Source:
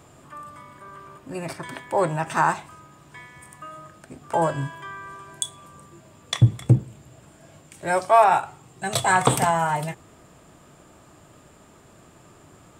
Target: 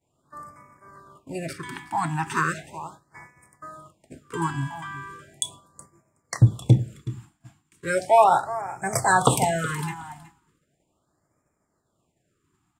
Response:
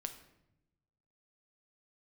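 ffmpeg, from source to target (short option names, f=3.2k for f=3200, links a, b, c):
-af "aecho=1:1:371|742:0.168|0.0336,agate=range=-33dB:threshold=-37dB:ratio=3:detection=peak,afftfilt=real='re*(1-between(b*sr/1024,470*pow(3600/470,0.5+0.5*sin(2*PI*0.37*pts/sr))/1.41,470*pow(3600/470,0.5+0.5*sin(2*PI*0.37*pts/sr))*1.41))':imag='im*(1-between(b*sr/1024,470*pow(3600/470,0.5+0.5*sin(2*PI*0.37*pts/sr))/1.41,470*pow(3600/470,0.5+0.5*sin(2*PI*0.37*pts/sr))*1.41))':win_size=1024:overlap=0.75"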